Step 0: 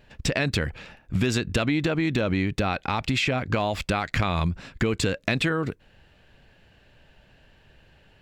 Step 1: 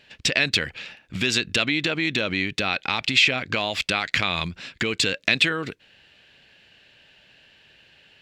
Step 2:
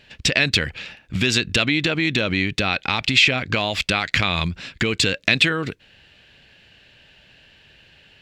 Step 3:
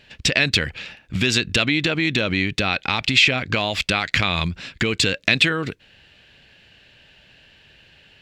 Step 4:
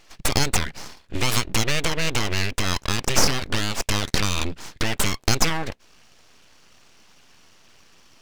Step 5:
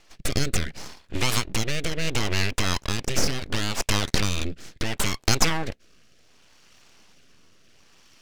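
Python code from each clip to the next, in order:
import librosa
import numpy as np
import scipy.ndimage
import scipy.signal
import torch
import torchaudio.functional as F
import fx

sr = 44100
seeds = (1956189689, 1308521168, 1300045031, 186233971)

y1 = fx.weighting(x, sr, curve='D')
y1 = y1 * librosa.db_to_amplitude(-2.0)
y2 = fx.low_shelf(y1, sr, hz=130.0, db=10.0)
y2 = y2 * librosa.db_to_amplitude(2.5)
y3 = y2
y4 = np.abs(y3)
y5 = fx.rotary(y4, sr, hz=0.7)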